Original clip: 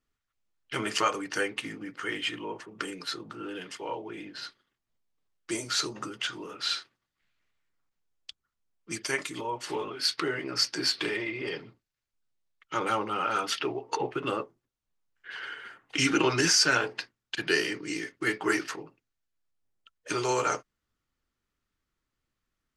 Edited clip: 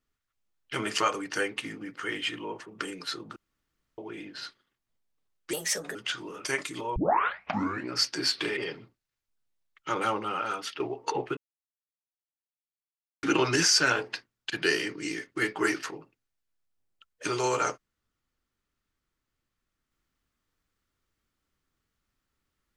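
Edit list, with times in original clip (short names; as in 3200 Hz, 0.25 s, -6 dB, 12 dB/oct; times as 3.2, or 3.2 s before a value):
3.36–3.98 room tone
5.53–6.1 speed 136%
6.6–9.05 cut
9.56 tape start 0.97 s
11.17–11.42 cut
13.02–13.65 fade out, to -9 dB
14.22–16.08 mute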